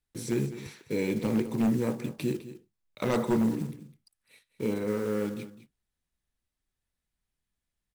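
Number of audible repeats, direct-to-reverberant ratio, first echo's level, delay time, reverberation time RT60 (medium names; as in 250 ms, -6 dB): 1, no reverb, -14.5 dB, 206 ms, no reverb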